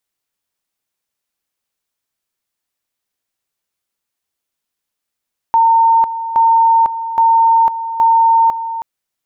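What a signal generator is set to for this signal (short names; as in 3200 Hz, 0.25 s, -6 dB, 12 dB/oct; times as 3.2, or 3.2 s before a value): two-level tone 911 Hz -7 dBFS, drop 12 dB, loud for 0.50 s, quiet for 0.32 s, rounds 4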